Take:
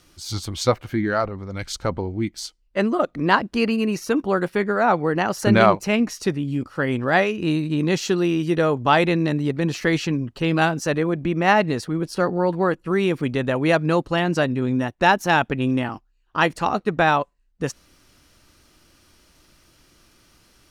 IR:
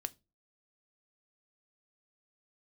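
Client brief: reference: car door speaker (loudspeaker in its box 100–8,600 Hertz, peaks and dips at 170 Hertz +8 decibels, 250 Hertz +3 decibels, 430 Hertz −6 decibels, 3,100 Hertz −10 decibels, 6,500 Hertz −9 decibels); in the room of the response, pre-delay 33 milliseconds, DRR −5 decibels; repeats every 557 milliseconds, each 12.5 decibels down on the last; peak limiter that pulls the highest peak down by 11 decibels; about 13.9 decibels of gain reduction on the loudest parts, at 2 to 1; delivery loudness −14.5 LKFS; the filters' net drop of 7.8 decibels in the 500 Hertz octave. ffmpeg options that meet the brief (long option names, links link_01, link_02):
-filter_complex "[0:a]equalizer=frequency=500:width_type=o:gain=-8.5,acompressor=threshold=-39dB:ratio=2,alimiter=level_in=4dB:limit=-24dB:level=0:latency=1,volume=-4dB,aecho=1:1:557|1114|1671:0.237|0.0569|0.0137,asplit=2[link_01][link_02];[1:a]atrim=start_sample=2205,adelay=33[link_03];[link_02][link_03]afir=irnorm=-1:irlink=0,volume=6.5dB[link_04];[link_01][link_04]amix=inputs=2:normalize=0,highpass=100,equalizer=frequency=170:width_type=q:width=4:gain=8,equalizer=frequency=250:width_type=q:width=4:gain=3,equalizer=frequency=430:width_type=q:width=4:gain=-6,equalizer=frequency=3100:width_type=q:width=4:gain=-10,equalizer=frequency=6500:width_type=q:width=4:gain=-9,lowpass=frequency=8600:width=0.5412,lowpass=frequency=8600:width=1.3066,volume=16dB"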